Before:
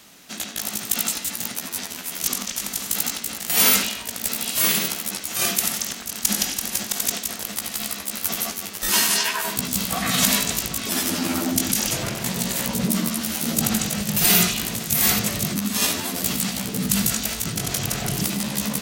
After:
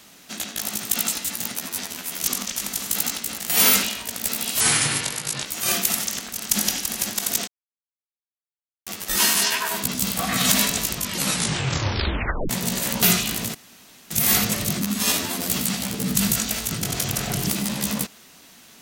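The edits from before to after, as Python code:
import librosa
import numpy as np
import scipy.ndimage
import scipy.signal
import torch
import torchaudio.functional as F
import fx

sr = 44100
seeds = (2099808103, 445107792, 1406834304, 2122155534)

y = fx.edit(x, sr, fx.speed_span(start_s=4.6, length_s=0.59, speed=0.69),
    fx.silence(start_s=7.21, length_s=1.39),
    fx.tape_stop(start_s=10.64, length_s=1.59),
    fx.cut(start_s=12.76, length_s=1.57),
    fx.insert_room_tone(at_s=14.85, length_s=0.56), tone=tone)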